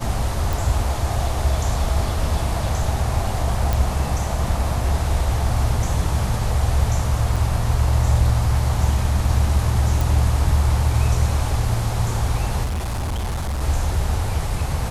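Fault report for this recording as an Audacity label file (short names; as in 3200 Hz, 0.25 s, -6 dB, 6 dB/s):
0.530000	0.530000	pop
3.730000	3.730000	pop
7.360000	7.370000	gap 5.1 ms
10.010000	10.010000	pop
12.640000	13.620000	clipped -21 dBFS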